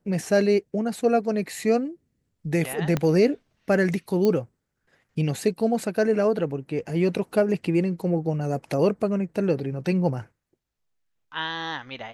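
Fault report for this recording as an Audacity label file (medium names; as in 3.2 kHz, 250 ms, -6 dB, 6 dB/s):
2.970000	2.970000	pop -11 dBFS
4.250000	4.250000	pop -12 dBFS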